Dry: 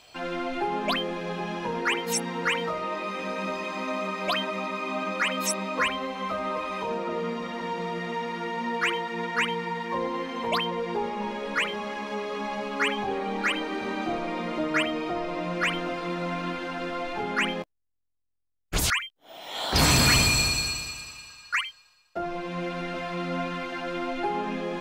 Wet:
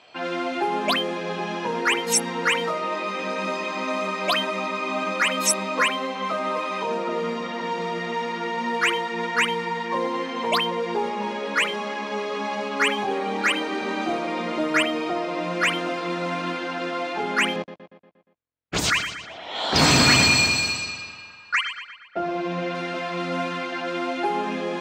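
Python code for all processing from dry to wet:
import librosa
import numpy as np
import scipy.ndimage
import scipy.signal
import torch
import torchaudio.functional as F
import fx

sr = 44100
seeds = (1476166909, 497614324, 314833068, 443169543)

y = fx.chain(x, sr, fx.moving_average(points=4),
    fx.low_shelf(hz=130.0, db=9.5),
    fx.echo_feedback(ms=118, feedback_pct=55, wet_db=-10.5), at=(17.56, 22.75))
y = fx.env_lowpass(y, sr, base_hz=2600.0, full_db=-23.0)
y = scipy.signal.sosfilt(scipy.signal.butter(2, 190.0, 'highpass', fs=sr, output='sos'), y)
y = fx.peak_eq(y, sr, hz=10000.0, db=5.0, octaves=1.7)
y = F.gain(torch.from_numpy(y), 4.0).numpy()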